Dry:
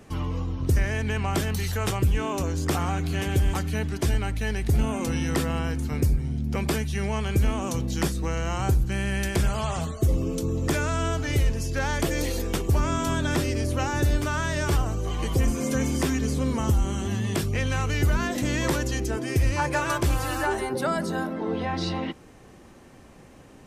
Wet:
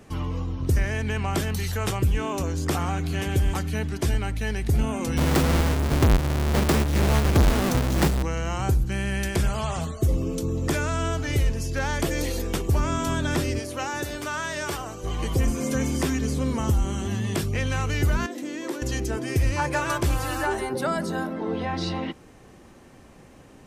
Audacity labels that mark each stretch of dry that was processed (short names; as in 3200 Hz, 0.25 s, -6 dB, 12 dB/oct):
5.170000	8.230000	half-waves squared off
13.590000	15.040000	HPF 450 Hz 6 dB/oct
18.260000	18.820000	ladder high-pass 260 Hz, resonance 50%